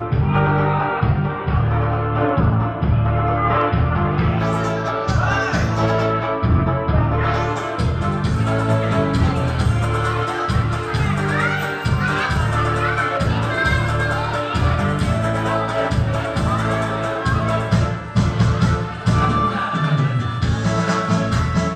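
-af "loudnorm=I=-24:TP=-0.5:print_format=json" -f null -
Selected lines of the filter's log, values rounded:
"input_i" : "-19.1",
"input_tp" : "-6.5",
"input_lra" : "1.0",
"input_thresh" : "-29.1",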